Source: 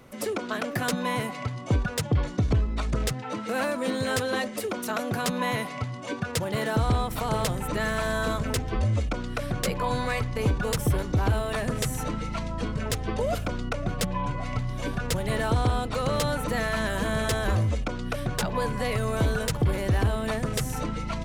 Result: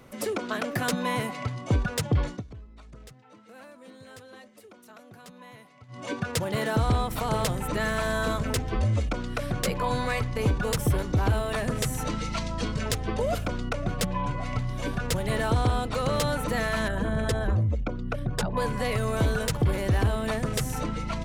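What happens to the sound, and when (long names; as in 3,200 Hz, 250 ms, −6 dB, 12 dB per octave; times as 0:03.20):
0:02.29–0:06.02: duck −20.5 dB, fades 0.14 s
0:12.07–0:12.92: parametric band 5,300 Hz +8 dB 1.8 octaves
0:16.88–0:18.57: spectral envelope exaggerated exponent 1.5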